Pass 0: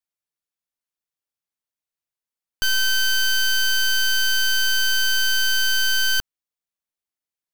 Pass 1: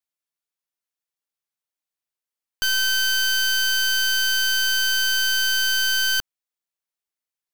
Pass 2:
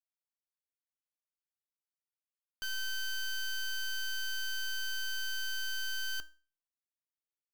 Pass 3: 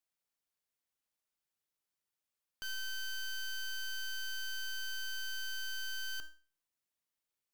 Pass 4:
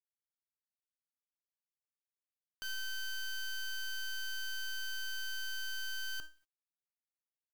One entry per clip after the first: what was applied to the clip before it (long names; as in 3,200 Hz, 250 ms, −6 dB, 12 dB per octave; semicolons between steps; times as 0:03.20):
low-shelf EQ 280 Hz −7 dB
tuned comb filter 310 Hz, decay 0.36 s, harmonics all, mix 70%; level −8 dB
brickwall limiter −40 dBFS, peak gain reduction 9.5 dB; level +5 dB
mu-law and A-law mismatch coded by A; level +4 dB